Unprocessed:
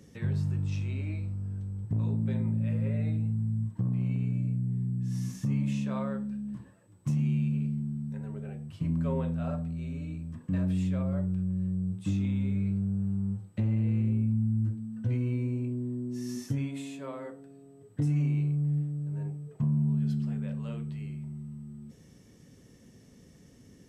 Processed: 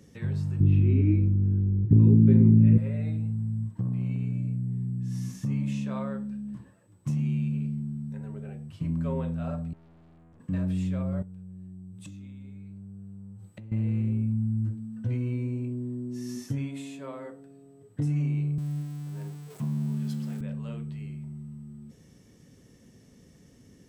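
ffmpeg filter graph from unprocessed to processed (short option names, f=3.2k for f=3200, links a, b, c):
-filter_complex "[0:a]asettb=1/sr,asplit=3[a][b][c];[a]atrim=end=0.604[d];[b]atrim=start=0.6:end=2.78,asetpts=PTS-STARTPTS,afade=t=in:d=0.004:c=qsin,afade=t=out:st=2.176:d=0.004:c=qsin,lowpass=f=3k:w=0.5412,lowpass=f=3k:w=1.3066,lowshelf=f=480:t=q:w=3:g=10.5[e];[c]atrim=start=2.776[f];[d][e]acrossfade=d=0.004:c1=hsin:c2=qsin[g];[g][f]acrossfade=d=0.004:c1=qsin:c2=hsin,asettb=1/sr,asplit=3[h][i][j];[h]atrim=end=9.734[k];[i]atrim=start=9.73:end=10.4,asetpts=PTS-STARTPTS,afade=t=in:d=0.004:c=qsin,afade=t=out:st=0.666:d=0.004:c=qsin,acrossover=split=190|3000[l][m][n];[m]acompressor=threshold=-48dB:ratio=6:attack=3.2:release=140:knee=2.83:detection=peak[o];[l][o][n]amix=inputs=3:normalize=0,aeval=exprs='(tanh(562*val(0)+0.4)-tanh(0.4))/562':c=same,highshelf=f=4.7k:g=-9[p];[j]atrim=start=10.396[q];[k][p]acrossfade=d=0.004:c1=hsin:c2=qsin[r];[r][q]acrossfade=d=0.004:c1=qsin:c2=hsin,asettb=1/sr,asplit=3[s][t][u];[s]atrim=end=11.224[v];[t]atrim=start=11.22:end=13.72,asetpts=PTS-STARTPTS,afade=t=in:d=0.004:c=qsin,afade=t=out:st=2.496:d=0.004:c=qsin,highshelf=f=5.5k:g=7,bandreject=f=5.3k:w=25,acompressor=threshold=-40dB:ratio=12:attack=3.2:release=140:knee=1:detection=peak[w];[u]atrim=start=13.716[x];[v][w]acrossfade=d=0.004:c1=hsin:c2=qsin[y];[y][x]acrossfade=d=0.004:c1=qsin:c2=hsin,asettb=1/sr,asplit=3[z][aa][ab];[z]atrim=end=18.584[ac];[aa]atrim=start=18.58:end=20.41,asetpts=PTS-STARTPTS,afade=t=in:d=0.004:c=qsin,afade=t=out:st=1.826:d=0.004:c=qsin,aeval=exprs='val(0)+0.5*0.00473*sgn(val(0))':c=same,highpass=160,highshelf=f=4.3k:g=10[ad];[ab]atrim=start=20.406[ae];[ac][ad]acrossfade=d=0.004:c1=hsin:c2=qsin[af];[af][ae]acrossfade=d=0.004:c1=qsin:c2=hsin"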